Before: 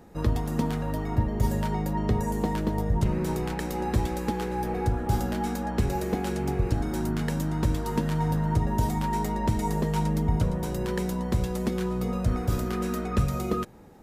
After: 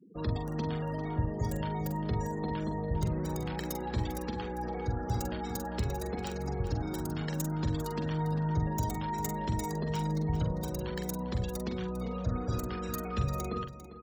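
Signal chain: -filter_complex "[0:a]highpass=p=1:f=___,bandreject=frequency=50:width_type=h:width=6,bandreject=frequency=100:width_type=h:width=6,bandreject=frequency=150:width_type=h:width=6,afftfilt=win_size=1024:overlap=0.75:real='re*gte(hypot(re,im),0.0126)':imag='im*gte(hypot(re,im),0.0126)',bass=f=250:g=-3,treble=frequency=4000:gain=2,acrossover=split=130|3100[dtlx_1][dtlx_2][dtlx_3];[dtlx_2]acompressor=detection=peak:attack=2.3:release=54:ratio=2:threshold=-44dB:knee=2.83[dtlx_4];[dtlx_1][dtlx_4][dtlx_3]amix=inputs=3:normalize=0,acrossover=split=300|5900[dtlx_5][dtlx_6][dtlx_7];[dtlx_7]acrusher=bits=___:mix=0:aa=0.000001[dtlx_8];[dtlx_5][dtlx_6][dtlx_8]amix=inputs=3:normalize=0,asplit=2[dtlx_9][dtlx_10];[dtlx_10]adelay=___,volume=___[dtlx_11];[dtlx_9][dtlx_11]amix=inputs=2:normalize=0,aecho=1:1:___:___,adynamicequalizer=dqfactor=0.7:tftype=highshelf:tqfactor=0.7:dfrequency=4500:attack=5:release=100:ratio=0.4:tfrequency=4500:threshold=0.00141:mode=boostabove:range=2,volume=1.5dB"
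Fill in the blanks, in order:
87, 6, 45, -7.5dB, 399, 0.224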